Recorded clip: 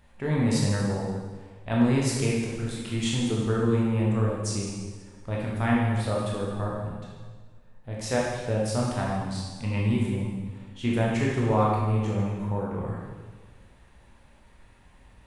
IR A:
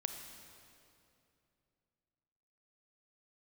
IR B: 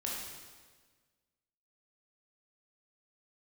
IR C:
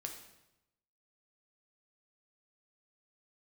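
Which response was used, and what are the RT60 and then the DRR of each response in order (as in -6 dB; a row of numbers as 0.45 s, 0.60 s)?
B; 2.7 s, 1.5 s, 0.90 s; 5.5 dB, -4.5 dB, 2.5 dB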